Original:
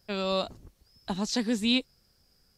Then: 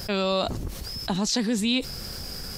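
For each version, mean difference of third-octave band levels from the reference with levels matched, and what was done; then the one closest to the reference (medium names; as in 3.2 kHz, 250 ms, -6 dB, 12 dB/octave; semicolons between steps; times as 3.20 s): 6.0 dB: level flattener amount 70%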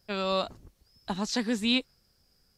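1.0 dB: dynamic bell 1.4 kHz, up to +5 dB, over -44 dBFS, Q 0.77; trim -1.5 dB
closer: second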